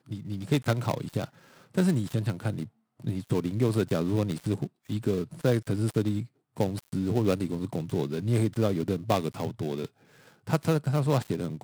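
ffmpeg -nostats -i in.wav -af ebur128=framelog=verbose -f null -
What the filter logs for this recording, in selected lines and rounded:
Integrated loudness:
  I:         -29.1 LUFS
  Threshold: -39.4 LUFS
Loudness range:
  LRA:         1.4 LU
  Threshold: -49.3 LUFS
  LRA low:   -30.1 LUFS
  LRA high:  -28.7 LUFS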